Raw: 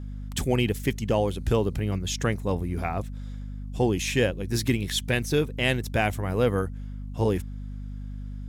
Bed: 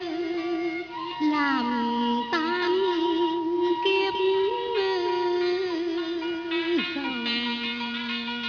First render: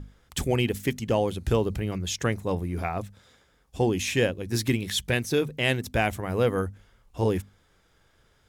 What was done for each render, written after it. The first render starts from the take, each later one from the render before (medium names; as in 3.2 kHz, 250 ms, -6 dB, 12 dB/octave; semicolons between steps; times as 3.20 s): hum notches 50/100/150/200/250 Hz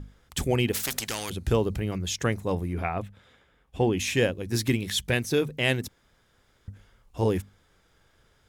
0.73–1.30 s: spectrum-flattening compressor 4:1; 2.73–4.00 s: resonant high shelf 3.9 kHz -7.5 dB, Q 1.5; 5.88–6.68 s: room tone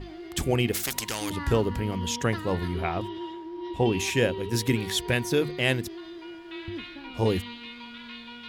add bed -12 dB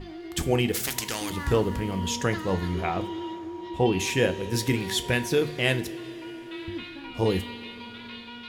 two-slope reverb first 0.29 s, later 4.4 s, from -19 dB, DRR 9 dB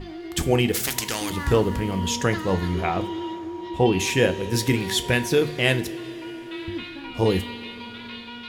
trim +3.5 dB